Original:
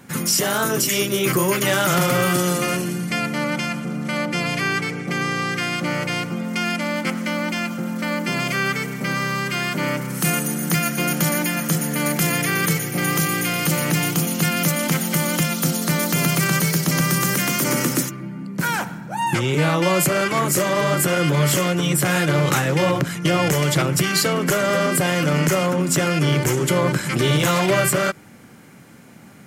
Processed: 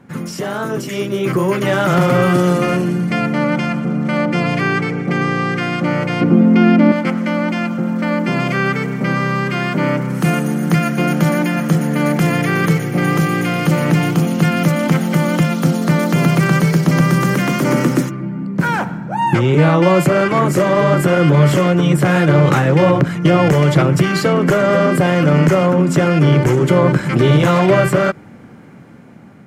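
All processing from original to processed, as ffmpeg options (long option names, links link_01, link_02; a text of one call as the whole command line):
ffmpeg -i in.wav -filter_complex "[0:a]asettb=1/sr,asplit=3[link_01][link_02][link_03];[link_01]atrim=end=6.214[link_04];[link_02]atrim=start=6.21:end=6.92,asetpts=PTS-STARTPTS,afade=type=in:duration=0.004:curve=qsin,afade=type=out:start_time=0.706:duration=0.004:curve=qsin,acrossover=split=5200[link_05][link_06];[link_06]acompressor=threshold=-50dB:ratio=4:attack=1:release=60[link_07];[link_05][link_07]amix=inputs=2:normalize=0,equalizer=frequency=290:width=0.84:gain=12.5[link_08];[link_03]atrim=start=6.916[link_09];[link_04][link_08]acrossfade=duration=0.004:curve1=hsin:curve2=qsin[link_10];[link_10][link_09]acrossfade=duration=0.004:curve1=qsin:curve2=hsin,dynaudnorm=framelen=640:gausssize=5:maxgain=11.5dB,lowpass=frequency=1100:poles=1,volume=1.5dB" out.wav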